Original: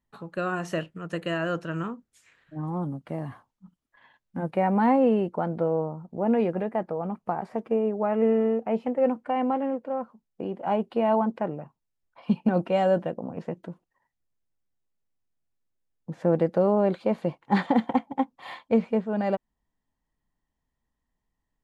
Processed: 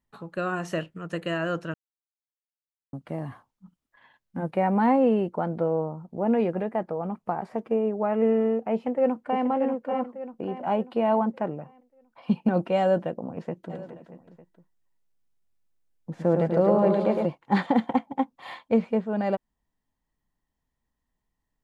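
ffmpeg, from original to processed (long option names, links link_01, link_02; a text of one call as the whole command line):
ffmpeg -i in.wav -filter_complex "[0:a]asplit=2[link_01][link_02];[link_02]afade=type=in:start_time=8.73:duration=0.01,afade=type=out:start_time=9.44:duration=0.01,aecho=0:1:590|1180|1770|2360|2950:0.501187|0.200475|0.08019|0.032076|0.0128304[link_03];[link_01][link_03]amix=inputs=2:normalize=0,asplit=3[link_04][link_05][link_06];[link_04]afade=type=out:start_time=13.69:duration=0.02[link_07];[link_05]aecho=1:1:110|247.5|419.4|634.2|902.8:0.631|0.398|0.251|0.158|0.1,afade=type=in:start_time=13.69:duration=0.02,afade=type=out:start_time=17.25:duration=0.02[link_08];[link_06]afade=type=in:start_time=17.25:duration=0.02[link_09];[link_07][link_08][link_09]amix=inputs=3:normalize=0,asplit=3[link_10][link_11][link_12];[link_10]atrim=end=1.74,asetpts=PTS-STARTPTS,afade=type=out:start_time=1.736:duration=0.004:curve=hsin[link_13];[link_11]atrim=start=1.74:end=2.93,asetpts=PTS-STARTPTS,volume=0[link_14];[link_12]atrim=start=2.93,asetpts=PTS-STARTPTS,afade=type=in:duration=0.004:curve=hsin[link_15];[link_13][link_14][link_15]concat=n=3:v=0:a=1" out.wav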